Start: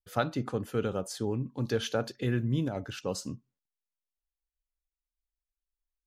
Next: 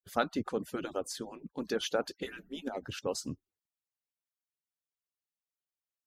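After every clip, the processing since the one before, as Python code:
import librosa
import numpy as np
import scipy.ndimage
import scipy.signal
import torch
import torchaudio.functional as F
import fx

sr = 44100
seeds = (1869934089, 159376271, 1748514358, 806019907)

y = fx.hpss_only(x, sr, part='percussive')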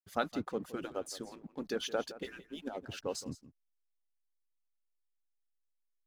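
y = fx.backlash(x, sr, play_db=-52.0)
y = y + 10.0 ** (-16.0 / 20.0) * np.pad(y, (int(168 * sr / 1000.0), 0))[:len(y)]
y = F.gain(torch.from_numpy(y), -3.0).numpy()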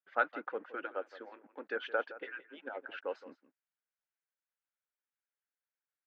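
y = fx.cabinet(x, sr, low_hz=390.0, low_slope=24, high_hz=2400.0, hz=(400.0, 690.0, 1100.0, 1500.0), db=(-7, -5, -4, 7))
y = F.gain(torch.from_numpy(y), 3.0).numpy()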